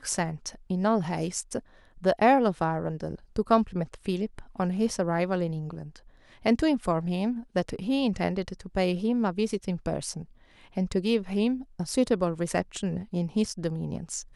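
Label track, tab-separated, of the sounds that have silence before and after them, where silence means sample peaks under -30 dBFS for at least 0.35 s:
2.040000	5.960000	sound
6.460000	10.220000	sound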